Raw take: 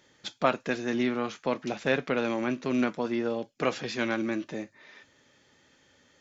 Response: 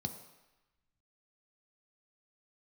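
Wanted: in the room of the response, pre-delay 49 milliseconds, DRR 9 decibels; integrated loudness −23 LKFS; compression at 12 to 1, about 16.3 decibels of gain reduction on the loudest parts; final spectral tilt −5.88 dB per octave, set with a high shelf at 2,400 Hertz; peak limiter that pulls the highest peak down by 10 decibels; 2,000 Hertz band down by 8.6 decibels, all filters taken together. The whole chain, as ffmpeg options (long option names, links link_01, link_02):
-filter_complex "[0:a]equalizer=frequency=2000:width_type=o:gain=-7.5,highshelf=frequency=2400:gain=-8.5,acompressor=threshold=-38dB:ratio=12,alimiter=level_in=11.5dB:limit=-24dB:level=0:latency=1,volume=-11.5dB,asplit=2[link_01][link_02];[1:a]atrim=start_sample=2205,adelay=49[link_03];[link_02][link_03]afir=irnorm=-1:irlink=0,volume=-8.5dB[link_04];[link_01][link_04]amix=inputs=2:normalize=0,volume=21.5dB"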